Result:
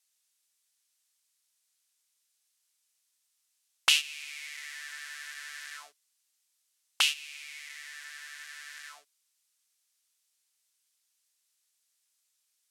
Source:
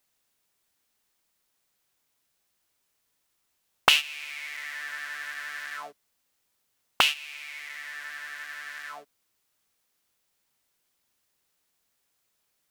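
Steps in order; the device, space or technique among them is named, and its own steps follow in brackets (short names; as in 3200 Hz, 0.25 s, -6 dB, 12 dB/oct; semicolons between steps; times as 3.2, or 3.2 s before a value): piezo pickup straight into a mixer (LPF 8700 Hz 12 dB/oct; differentiator); gain +4.5 dB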